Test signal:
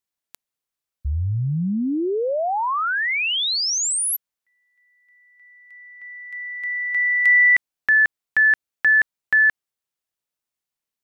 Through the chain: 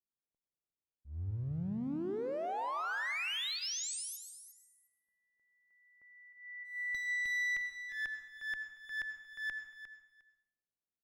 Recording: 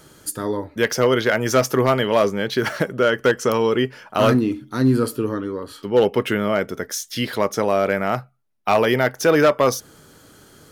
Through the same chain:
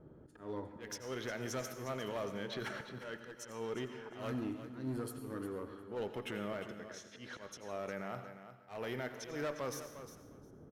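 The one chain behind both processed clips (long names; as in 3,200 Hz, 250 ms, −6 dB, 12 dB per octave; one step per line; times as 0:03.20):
low-pass that shuts in the quiet parts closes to 510 Hz, open at −16.5 dBFS
notch filter 4,700 Hz, Q 8.7
downward compressor 3 to 1, threshold −34 dBFS
asymmetric clip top −31 dBFS, bottom −19.5 dBFS
brickwall limiter −24.5 dBFS
volume swells 167 ms
on a send: repeating echo 355 ms, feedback 16%, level −11.5 dB
on the sum: dense smooth reverb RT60 0.71 s, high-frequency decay 1×, pre-delay 75 ms, DRR 9 dB
level −5.5 dB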